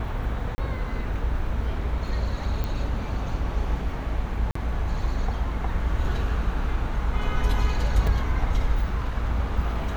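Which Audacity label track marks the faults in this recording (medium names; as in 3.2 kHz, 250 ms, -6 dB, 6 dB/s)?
0.550000	0.580000	dropout 30 ms
2.640000	2.640000	pop -16 dBFS
4.510000	4.550000	dropout 44 ms
8.070000	8.070000	dropout 3.6 ms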